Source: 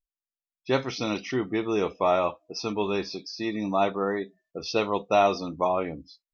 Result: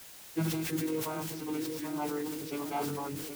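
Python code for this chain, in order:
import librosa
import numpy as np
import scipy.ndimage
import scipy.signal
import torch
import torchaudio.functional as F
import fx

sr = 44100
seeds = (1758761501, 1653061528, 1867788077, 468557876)

p1 = fx.vocoder_glide(x, sr, note=52, semitones=-3)
p2 = fx.peak_eq(p1, sr, hz=580.0, db=-8.5, octaves=0.58)
p3 = fx.stretch_vocoder_free(p2, sr, factor=0.53)
p4 = fx.echo_filtered(p3, sr, ms=774, feedback_pct=49, hz=2000.0, wet_db=-8)
p5 = fx.quant_dither(p4, sr, seeds[0], bits=6, dither='triangular')
p6 = p4 + (p5 * librosa.db_to_amplitude(-7.0))
p7 = fx.peak_eq(p6, sr, hz=1200.0, db=-3.5, octaves=0.28)
p8 = fx.sustainer(p7, sr, db_per_s=26.0)
y = p8 * librosa.db_to_amplitude(-7.0)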